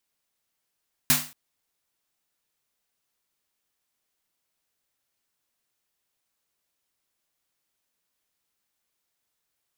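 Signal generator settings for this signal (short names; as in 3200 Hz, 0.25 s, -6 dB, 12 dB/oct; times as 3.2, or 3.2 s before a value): snare drum length 0.23 s, tones 150 Hz, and 250 Hz, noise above 630 Hz, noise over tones 10 dB, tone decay 0.33 s, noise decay 0.37 s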